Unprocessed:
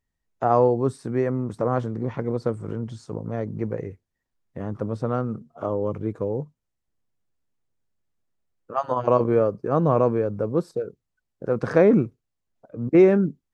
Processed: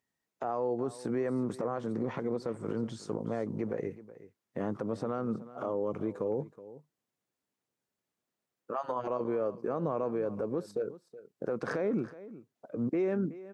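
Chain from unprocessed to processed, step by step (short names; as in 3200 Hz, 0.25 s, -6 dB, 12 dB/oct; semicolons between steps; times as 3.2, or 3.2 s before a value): HPF 200 Hz 12 dB/oct; compressor 6:1, threshold -27 dBFS, peak gain reduction 15 dB; limiter -24 dBFS, peak gain reduction 10 dB; echo 0.372 s -16.5 dB; gain +1 dB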